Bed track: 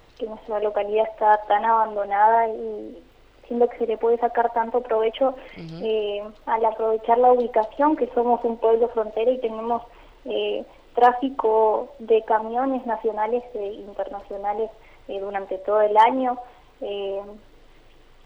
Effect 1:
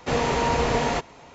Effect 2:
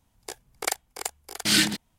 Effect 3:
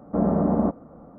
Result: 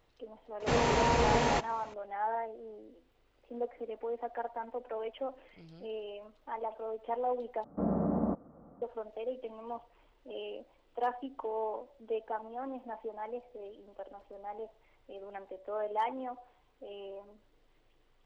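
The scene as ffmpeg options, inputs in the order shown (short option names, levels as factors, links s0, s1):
-filter_complex "[0:a]volume=0.141,asplit=2[s0][s1];[s0]atrim=end=7.644[s2];[3:a]atrim=end=1.18,asetpts=PTS-STARTPTS,volume=0.335[s3];[s1]atrim=start=8.816[s4];[1:a]atrim=end=1.34,asetpts=PTS-STARTPTS,volume=0.596,afade=t=in:d=0.004:c=hsin,afade=t=out:st=1.336:d=0.004:c=hsin,adelay=600[s5];[s2][s3]acrossfade=d=0.004:c1=hsin:c2=hsin[s6];[s6][s4]acrossfade=d=0.004:c1=hsin:c2=hsin[s7];[s7][s5]amix=inputs=2:normalize=0"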